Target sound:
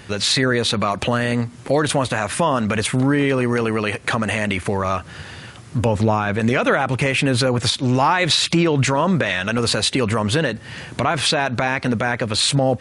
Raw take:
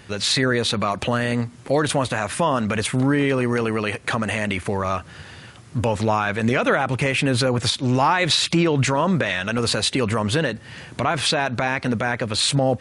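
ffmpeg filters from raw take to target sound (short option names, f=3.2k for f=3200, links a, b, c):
-filter_complex "[0:a]asettb=1/sr,asplit=3[a][b][c];[a]atrim=end=5.854[d];[b]atrim=start=5.85:end=6.4,asetpts=PTS-STARTPTS,afade=t=in:d=0.004:c=qsin,afade=t=out:st=0.546:d=0.004:c=qsin,tiltshelf=f=650:g=4[e];[c]atrim=start=6.396[f];[d][e]acrossfade=d=0.004:c1=hsin:c2=qsin[g];[g][f]acrossfade=d=0.004:c1=qsin:c2=hsin,asplit=2[h][i];[i]acompressor=threshold=-26dB:ratio=6,volume=-3dB[j];[h][j]amix=inputs=2:normalize=0"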